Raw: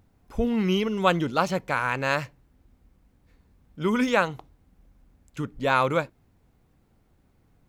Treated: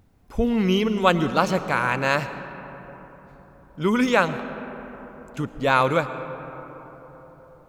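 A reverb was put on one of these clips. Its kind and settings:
comb and all-pass reverb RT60 4.5 s, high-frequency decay 0.35×, pre-delay 70 ms, DRR 11.5 dB
level +3 dB

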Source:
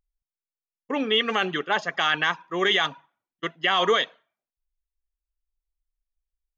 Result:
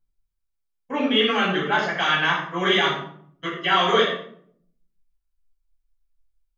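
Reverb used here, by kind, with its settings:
rectangular room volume 930 cubic metres, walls furnished, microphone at 7.9 metres
level −6 dB

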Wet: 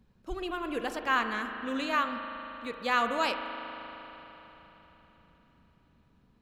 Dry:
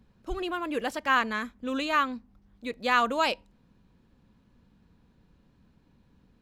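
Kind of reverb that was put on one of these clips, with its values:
spring reverb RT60 4 s, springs 38 ms, chirp 40 ms, DRR 6 dB
level −3.5 dB

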